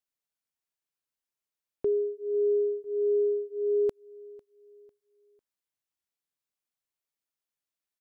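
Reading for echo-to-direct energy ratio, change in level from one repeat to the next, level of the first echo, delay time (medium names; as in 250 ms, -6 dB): -23.0 dB, -8.0 dB, -23.5 dB, 499 ms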